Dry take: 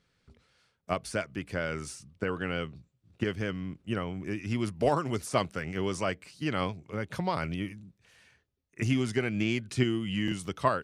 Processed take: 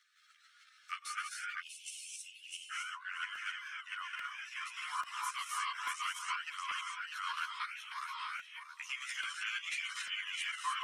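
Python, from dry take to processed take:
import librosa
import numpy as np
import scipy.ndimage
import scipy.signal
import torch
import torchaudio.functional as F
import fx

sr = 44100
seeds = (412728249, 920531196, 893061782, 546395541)

y = fx.notch(x, sr, hz=4700.0, q=7.2)
y = fx.echo_feedback(y, sr, ms=642, feedback_pct=23, wet_db=-4.0)
y = fx.rev_gated(y, sr, seeds[0], gate_ms=330, shape='rising', drr_db=-3.5)
y = fx.dereverb_blind(y, sr, rt60_s=0.54)
y = fx.level_steps(y, sr, step_db=9)
y = fx.cheby_ripple_highpass(y, sr, hz=fx.steps((0.0, 1200.0), (1.6, 2600.0), (2.69, 1000.0)), ripple_db=3)
y = fx.chorus_voices(y, sr, voices=2, hz=0.3, base_ms=13, depth_ms=2.0, mix_pct=55)
y = fx.buffer_crackle(y, sr, first_s=0.83, period_s=0.84, block=128, kind='repeat')
y = fx.band_squash(y, sr, depth_pct=40)
y = y * librosa.db_to_amplitude(2.5)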